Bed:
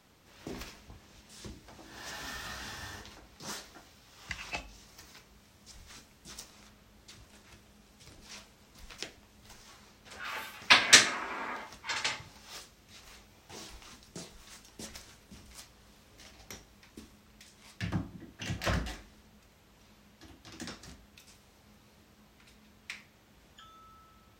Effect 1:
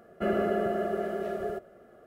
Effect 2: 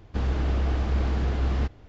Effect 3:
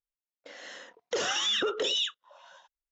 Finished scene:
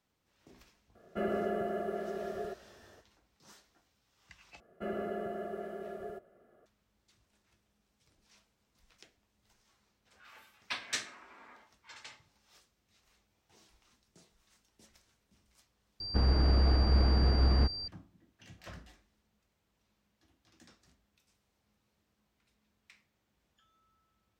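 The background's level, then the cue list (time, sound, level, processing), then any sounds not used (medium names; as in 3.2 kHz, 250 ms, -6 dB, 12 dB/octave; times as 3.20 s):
bed -17.5 dB
0.95 s: add 1 -6 dB
4.60 s: replace with 1 -10 dB
16.00 s: replace with 2 -1 dB + class-D stage that switches slowly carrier 4.7 kHz
not used: 3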